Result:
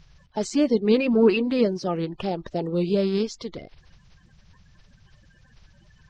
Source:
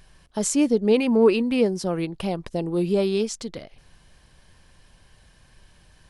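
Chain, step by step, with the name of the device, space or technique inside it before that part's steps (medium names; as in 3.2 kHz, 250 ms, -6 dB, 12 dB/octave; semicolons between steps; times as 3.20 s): clip after many re-uploads (low-pass 5.5 kHz 24 dB/octave; coarse spectral quantiser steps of 30 dB)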